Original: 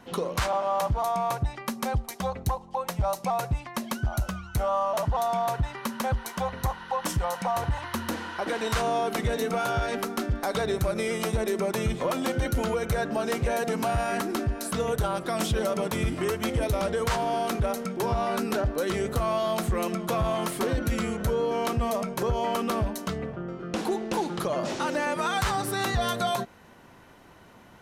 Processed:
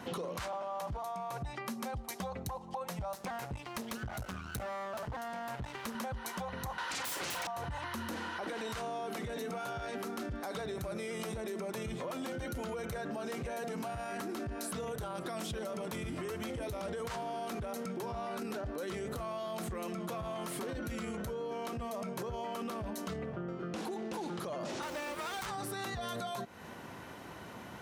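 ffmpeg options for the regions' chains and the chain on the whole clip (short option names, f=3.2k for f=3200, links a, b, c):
-filter_complex "[0:a]asettb=1/sr,asplit=3[a][b][c];[a]atrim=end=3.134[d];[b]atrim=start=3.13:end=5.95,asetpts=PTS-STARTPTS,afade=t=in:d=0.004:c=qsin,afade=t=out:st=2.816:d=0.004:c=qsin,asplit=2[e][f];[f]adelay=14,volume=-13dB[g];[e][g]amix=inputs=2:normalize=0,atrim=end_sample=124362,aeval=exprs='max(val(0),0)':c=same[h];[c]atrim=start=5.946[i];[d][h]acrossfade=d=0.004:c1=hsin:c2=qsin[j];[j][i]acrossfade=d=0.004:c1=qsin:c2=hsin,asettb=1/sr,asplit=3[k][l][m];[k]atrim=end=6.784[n];[l]atrim=start=6.78:end=7.47,asetpts=PTS-STARTPTS,afade=t=in:d=0.004:c=qsin,afade=t=out:st=0.686:d=0.004:c=qsin,highpass=f=440:w=0.5412,highpass=f=440:w=1.3066,aeval=exprs='0.133*sin(PI/2*8.91*val(0)/0.133)':c=same,asplit=2[o][p];[p]adelay=40,volume=-8dB[q];[o][q]amix=inputs=2:normalize=0,atrim=end_sample=30429[r];[m]atrim=start=7.466[s];[n][r]acrossfade=d=0.004:c1=hsin:c2=qsin[t];[t][s]acrossfade=d=0.004:c1=qsin:c2=hsin,asettb=1/sr,asplit=3[u][v][w];[u]atrim=end=24.824[x];[v]atrim=start=24.82:end=25.46,asetpts=PTS-STARTPTS,afade=t=in:d=0.004:c=qsin,afade=t=out:st=0.636:d=0.004:c=qsin,highpass=230,asoftclip=type=hard:threshold=-25.5dB,acrusher=bits=5:dc=4:mix=0:aa=0.000001[y];[w]atrim=start=25.456[z];[x][y]acrossfade=d=0.004:c1=hsin:c2=qsin[aa];[aa][z]acrossfade=d=0.004:c1=qsin:c2=hsin,highpass=73,alimiter=level_in=2.5dB:limit=-24dB:level=0:latency=1:release=10,volume=-2.5dB,acompressor=threshold=-42dB:ratio=6,volume=5dB"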